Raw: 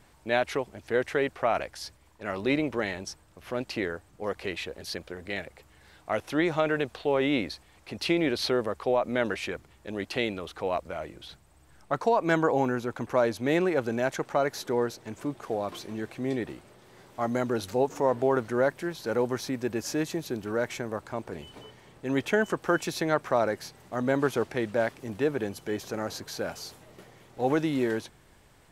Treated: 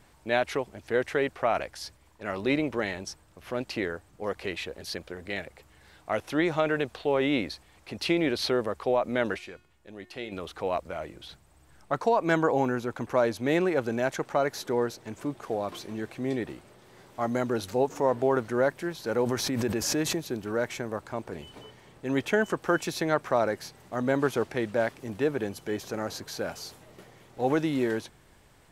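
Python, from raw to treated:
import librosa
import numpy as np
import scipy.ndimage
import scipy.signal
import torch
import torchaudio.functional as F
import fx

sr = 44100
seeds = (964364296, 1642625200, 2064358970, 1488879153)

y = fx.comb_fb(x, sr, f0_hz=360.0, decay_s=0.57, harmonics='all', damping=0.0, mix_pct=70, at=(9.37, 10.31), fade=0.02)
y = fx.pre_swell(y, sr, db_per_s=33.0, at=(19.21, 20.26))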